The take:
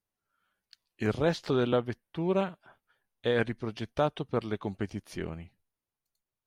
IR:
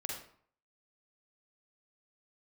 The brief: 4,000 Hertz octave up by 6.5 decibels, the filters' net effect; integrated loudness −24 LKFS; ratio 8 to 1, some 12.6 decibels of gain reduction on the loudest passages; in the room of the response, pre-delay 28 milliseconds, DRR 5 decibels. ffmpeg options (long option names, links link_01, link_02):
-filter_complex "[0:a]equalizer=frequency=4000:width_type=o:gain=8,acompressor=threshold=-35dB:ratio=8,asplit=2[link_01][link_02];[1:a]atrim=start_sample=2205,adelay=28[link_03];[link_02][link_03]afir=irnorm=-1:irlink=0,volume=-6dB[link_04];[link_01][link_04]amix=inputs=2:normalize=0,volume=16dB"